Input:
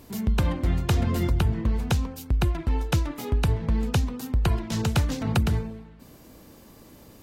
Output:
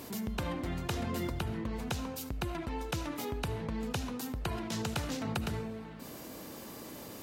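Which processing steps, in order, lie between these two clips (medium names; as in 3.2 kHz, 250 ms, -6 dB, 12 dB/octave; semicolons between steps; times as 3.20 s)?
high-pass 250 Hz 6 dB/octave; on a send at -15 dB: reverberation RT60 0.50 s, pre-delay 35 ms; on the sum: level flattener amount 50%; trim -8.5 dB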